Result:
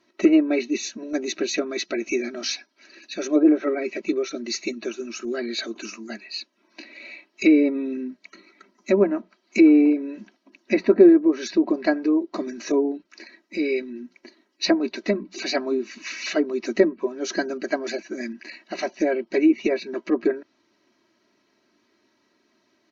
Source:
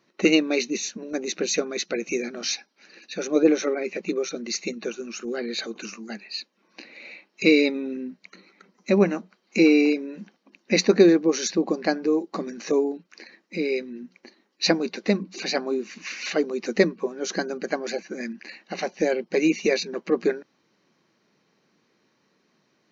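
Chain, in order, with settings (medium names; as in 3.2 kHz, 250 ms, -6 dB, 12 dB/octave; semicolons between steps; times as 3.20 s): low-pass that closes with the level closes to 1.2 kHz, closed at -16 dBFS; comb 3.1 ms, depth 84%; trim -1 dB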